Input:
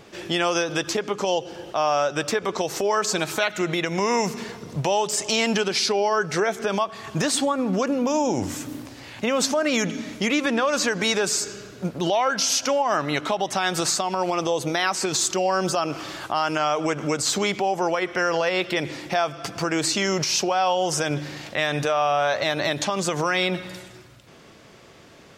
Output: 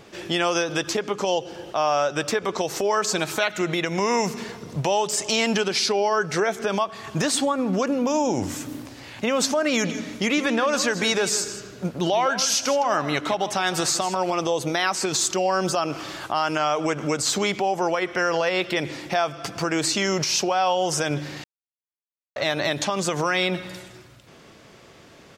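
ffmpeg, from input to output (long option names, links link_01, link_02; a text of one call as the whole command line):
ffmpeg -i in.wav -filter_complex "[0:a]asplit=3[link_01][link_02][link_03];[link_01]afade=type=out:start_time=9.83:duration=0.02[link_04];[link_02]aecho=1:1:160:0.224,afade=type=in:start_time=9.83:duration=0.02,afade=type=out:start_time=14.33:duration=0.02[link_05];[link_03]afade=type=in:start_time=14.33:duration=0.02[link_06];[link_04][link_05][link_06]amix=inputs=3:normalize=0,asplit=3[link_07][link_08][link_09];[link_07]atrim=end=21.44,asetpts=PTS-STARTPTS,afade=type=out:start_time=21.436:duration=0.004:curve=hsin[link_10];[link_08]atrim=start=21.44:end=22.36,asetpts=PTS-STARTPTS,volume=0[link_11];[link_09]atrim=start=22.36,asetpts=PTS-STARTPTS,afade=type=in:duration=0.004:curve=hsin[link_12];[link_10][link_11][link_12]concat=n=3:v=0:a=1" out.wav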